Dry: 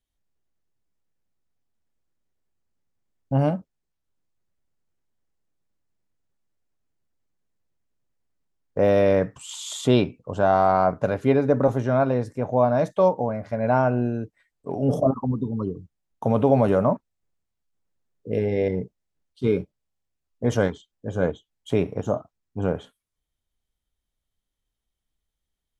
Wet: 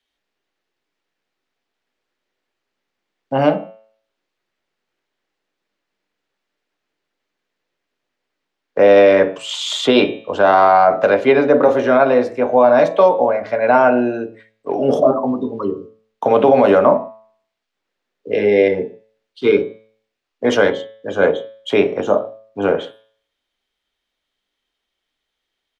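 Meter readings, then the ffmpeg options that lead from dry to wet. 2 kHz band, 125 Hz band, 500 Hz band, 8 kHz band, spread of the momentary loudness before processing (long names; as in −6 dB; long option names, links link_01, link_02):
+13.5 dB, −6.5 dB, +9.5 dB, can't be measured, 13 LU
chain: -filter_complex "[0:a]acrossover=split=280 4500:gain=0.112 1 0.1[link_01][link_02][link_03];[link_01][link_02][link_03]amix=inputs=3:normalize=0,bandreject=frequency=110:width_type=h:width=4,bandreject=frequency=220:width_type=h:width=4,bandreject=frequency=330:width_type=h:width=4,bandreject=frequency=440:width_type=h:width=4,bandreject=frequency=550:width_type=h:width=4,bandreject=frequency=660:width_type=h:width=4,bandreject=frequency=770:width_type=h:width=4,bandreject=frequency=880:width_type=h:width=4,bandreject=frequency=990:width_type=h:width=4,bandreject=frequency=1100:width_type=h:width=4,bandreject=frequency=1210:width_type=h:width=4,bandreject=frequency=1320:width_type=h:width=4,bandreject=frequency=1430:width_type=h:width=4,bandreject=frequency=1540:width_type=h:width=4,bandreject=frequency=1650:width_type=h:width=4,bandreject=frequency=1760:width_type=h:width=4,bandreject=frequency=1870:width_type=h:width=4,bandreject=frequency=1980:width_type=h:width=4,bandreject=frequency=2090:width_type=h:width=4,bandreject=frequency=2200:width_type=h:width=4,bandreject=frequency=2310:width_type=h:width=4,bandreject=frequency=2420:width_type=h:width=4,bandreject=frequency=2530:width_type=h:width=4,bandreject=frequency=2640:width_type=h:width=4,bandreject=frequency=2750:width_type=h:width=4,bandreject=frequency=2860:width_type=h:width=4,bandreject=frequency=2970:width_type=h:width=4,bandreject=frequency=3080:width_type=h:width=4,bandreject=frequency=3190:width_type=h:width=4,bandreject=frequency=3300:width_type=h:width=4,bandreject=frequency=3410:width_type=h:width=4,bandreject=frequency=3520:width_type=h:width=4,bandreject=frequency=3630:width_type=h:width=4,bandreject=frequency=3740:width_type=h:width=4,bandreject=frequency=3850:width_type=h:width=4,bandreject=frequency=3960:width_type=h:width=4,bandreject=frequency=4070:width_type=h:width=4,acrossover=split=120|830|1400[link_04][link_05][link_06][link_07];[link_05]aecho=1:1:20|44|72.8|107.4|148.8:0.631|0.398|0.251|0.158|0.1[link_08];[link_07]acontrast=77[link_09];[link_04][link_08][link_06][link_09]amix=inputs=4:normalize=0,alimiter=level_in=11dB:limit=-1dB:release=50:level=0:latency=1,volume=-1dB"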